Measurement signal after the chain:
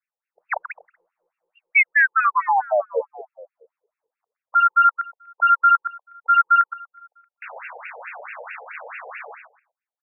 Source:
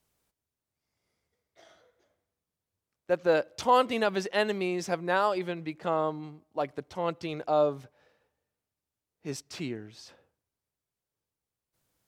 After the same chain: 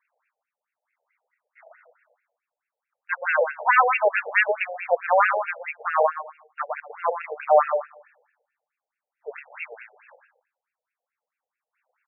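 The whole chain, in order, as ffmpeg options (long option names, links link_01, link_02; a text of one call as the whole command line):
ffmpeg -i in.wav -filter_complex "[0:a]crystalizer=i=4.5:c=0,aeval=exprs='0.531*(cos(1*acos(clip(val(0)/0.531,-1,1)))-cos(1*PI/2))+0.119*(cos(4*acos(clip(val(0)/0.531,-1,1)))-cos(4*PI/2))+0.00531*(cos(6*acos(clip(val(0)/0.531,-1,1)))-cos(6*PI/2))':channel_layout=same,asplit=2[link_01][link_02];[link_02]aecho=0:1:121|242|363:0.398|0.0836|0.0176[link_03];[link_01][link_03]amix=inputs=2:normalize=0,afftfilt=real='re*between(b*sr/1024,600*pow(2000/600,0.5+0.5*sin(2*PI*4.6*pts/sr))/1.41,600*pow(2000/600,0.5+0.5*sin(2*PI*4.6*pts/sr))*1.41)':imag='im*between(b*sr/1024,600*pow(2000/600,0.5+0.5*sin(2*PI*4.6*pts/sr))/1.41,600*pow(2000/600,0.5+0.5*sin(2*PI*4.6*pts/sr))*1.41)':win_size=1024:overlap=0.75,volume=9dB" out.wav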